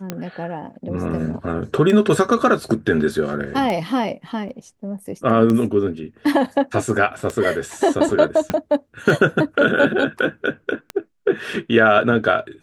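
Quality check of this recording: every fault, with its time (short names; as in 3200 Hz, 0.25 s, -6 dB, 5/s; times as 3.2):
tick 33 1/3 rpm -11 dBFS
4.49 gap 2.5 ms
8.5 pop -7 dBFS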